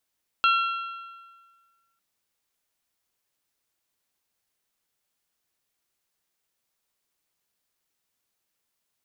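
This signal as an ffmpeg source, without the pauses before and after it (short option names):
-f lavfi -i "aevalsrc='0.141*pow(10,-3*t/1.6)*sin(2*PI*1360*t)+0.0794*pow(10,-3*t/1.3)*sin(2*PI*2720*t)+0.0447*pow(10,-3*t/1.23)*sin(2*PI*3264*t)+0.0251*pow(10,-3*t/1.151)*sin(2*PI*4080*t)':d=1.55:s=44100"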